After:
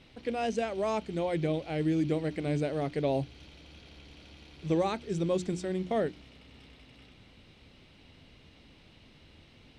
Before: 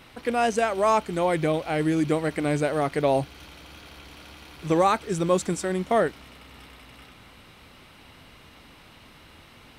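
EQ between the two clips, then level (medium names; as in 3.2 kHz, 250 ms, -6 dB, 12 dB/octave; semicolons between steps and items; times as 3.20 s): low-pass 4.6 kHz 12 dB/octave; peaking EQ 1.2 kHz -13 dB 1.7 oct; hum notches 60/120/180/240/300/360 Hz; -2.5 dB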